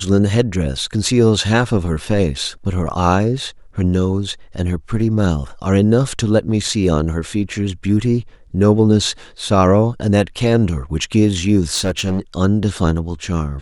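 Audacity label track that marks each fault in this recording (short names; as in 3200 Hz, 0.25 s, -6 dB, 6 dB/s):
11.740000	12.200000	clipped -14 dBFS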